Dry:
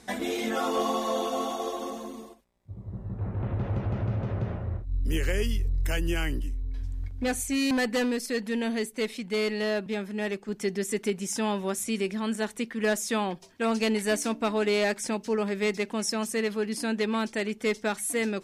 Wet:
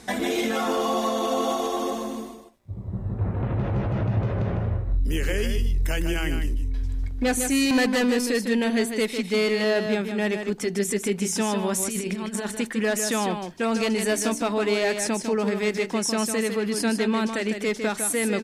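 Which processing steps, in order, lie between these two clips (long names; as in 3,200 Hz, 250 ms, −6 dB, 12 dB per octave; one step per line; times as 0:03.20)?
brickwall limiter −23.5 dBFS, peak gain reduction 5.5 dB
0:11.71–0:12.56: compressor whose output falls as the input rises −34 dBFS, ratio −0.5
single-tap delay 153 ms −7 dB
level +6.5 dB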